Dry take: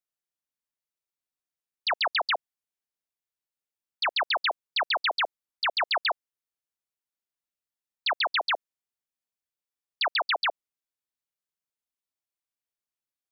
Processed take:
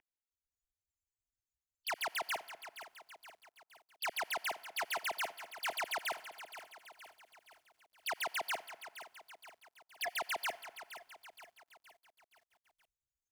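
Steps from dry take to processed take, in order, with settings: expander on every frequency bin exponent 3; steep low-pass 4 kHz 72 dB/octave; time-frequency box 9.56–10.10 s, 730–1700 Hz -23 dB; in parallel at +2 dB: peak limiter -34 dBFS, peak gain reduction 11 dB; on the sum: waveshaping leveller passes 2; upward compressor, threshold -32 dBFS; static phaser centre 790 Hz, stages 8; saturation -35.5 dBFS, distortion -6 dB; on a send at -20 dB: reverberation RT60 2.0 s, pre-delay 57 ms; on the sum: bit-crushed delay 470 ms, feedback 55%, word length 11-bit, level -12 dB; trim +1.5 dB

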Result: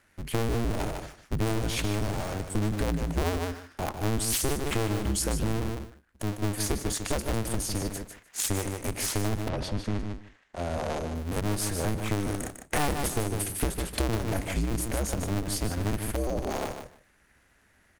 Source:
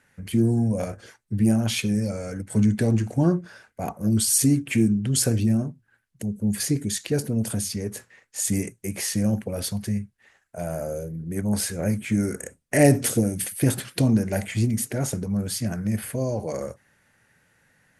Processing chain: cycle switcher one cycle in 2, inverted; bass shelf 70 Hz +5.5 dB; feedback delay 151 ms, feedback 15%, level -8 dB; compression 6:1, threshold -22 dBFS, peak gain reduction 11.5 dB; 9.48–11.14 s: low-pass 4 kHz -> 8.1 kHz 12 dB/octave; trim -2 dB

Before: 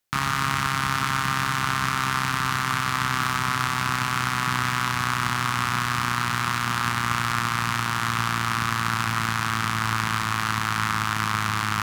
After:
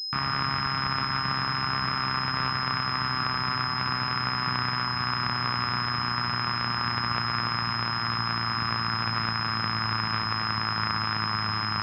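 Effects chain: class-D stage that switches slowly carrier 5.1 kHz; trim -3.5 dB

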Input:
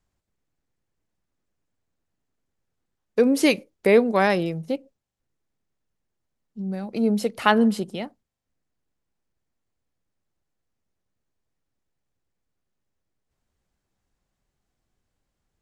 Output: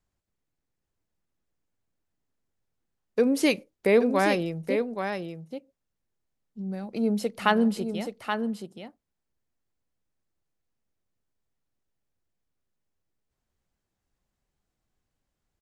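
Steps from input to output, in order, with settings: delay 826 ms -7 dB; trim -4 dB

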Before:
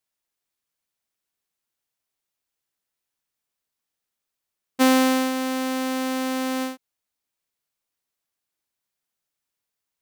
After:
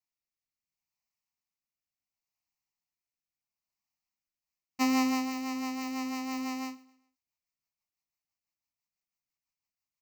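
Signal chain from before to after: rotary cabinet horn 0.7 Hz, later 6 Hz, at 4.07 s; static phaser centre 2.3 kHz, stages 8; on a send: feedback delay 131 ms, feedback 39%, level -22 dB; on the sum: trim -3.5 dB

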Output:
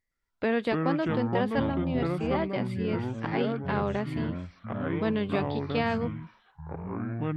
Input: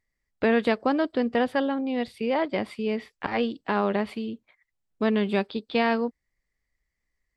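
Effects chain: ever faster or slower copies 114 ms, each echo -6 st, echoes 3; trim -5 dB

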